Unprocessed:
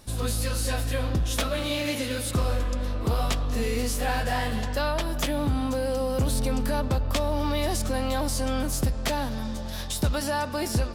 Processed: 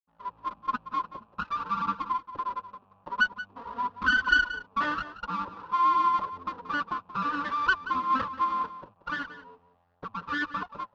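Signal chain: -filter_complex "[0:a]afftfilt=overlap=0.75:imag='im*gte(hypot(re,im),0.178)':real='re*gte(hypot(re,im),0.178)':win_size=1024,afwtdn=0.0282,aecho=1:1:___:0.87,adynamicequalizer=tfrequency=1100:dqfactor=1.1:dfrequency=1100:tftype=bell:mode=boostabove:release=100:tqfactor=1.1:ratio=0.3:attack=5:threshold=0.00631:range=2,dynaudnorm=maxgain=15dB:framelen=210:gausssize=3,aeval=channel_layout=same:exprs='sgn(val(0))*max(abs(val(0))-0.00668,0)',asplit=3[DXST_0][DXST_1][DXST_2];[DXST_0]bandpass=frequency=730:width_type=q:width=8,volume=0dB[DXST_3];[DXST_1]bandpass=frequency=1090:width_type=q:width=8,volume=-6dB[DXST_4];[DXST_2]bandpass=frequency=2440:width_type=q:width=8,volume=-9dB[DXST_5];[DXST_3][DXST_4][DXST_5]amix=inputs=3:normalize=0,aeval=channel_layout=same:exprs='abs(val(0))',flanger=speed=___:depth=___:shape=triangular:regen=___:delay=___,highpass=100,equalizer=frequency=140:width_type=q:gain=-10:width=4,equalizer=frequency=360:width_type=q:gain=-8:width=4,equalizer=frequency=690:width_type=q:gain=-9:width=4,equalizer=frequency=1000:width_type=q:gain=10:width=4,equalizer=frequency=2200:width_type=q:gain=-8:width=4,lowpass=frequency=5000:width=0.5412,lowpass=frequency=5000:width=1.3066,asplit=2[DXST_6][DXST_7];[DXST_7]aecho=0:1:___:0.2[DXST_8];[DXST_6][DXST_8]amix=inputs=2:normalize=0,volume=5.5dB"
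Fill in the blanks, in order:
5.6, 0.5, 6, -39, 0.2, 180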